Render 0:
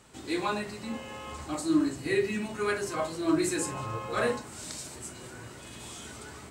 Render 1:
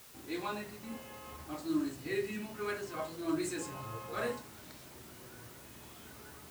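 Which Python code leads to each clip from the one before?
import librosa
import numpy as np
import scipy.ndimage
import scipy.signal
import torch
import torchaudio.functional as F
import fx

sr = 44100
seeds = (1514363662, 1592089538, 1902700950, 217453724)

y = fx.env_lowpass(x, sr, base_hz=1900.0, full_db=-22.0)
y = fx.quant_dither(y, sr, seeds[0], bits=8, dither='triangular')
y = y * librosa.db_to_amplitude(-8.0)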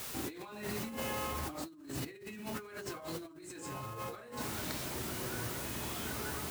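y = fx.over_compress(x, sr, threshold_db=-49.0, ratio=-1.0)
y = y * librosa.db_to_amplitude(6.0)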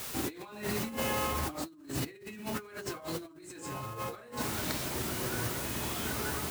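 y = fx.upward_expand(x, sr, threshold_db=-48.0, expansion=1.5)
y = y * librosa.db_to_amplitude(6.0)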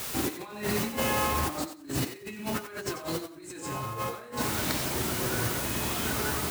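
y = fx.echo_thinned(x, sr, ms=91, feedback_pct=19, hz=420.0, wet_db=-10.0)
y = y * librosa.db_to_amplitude(4.5)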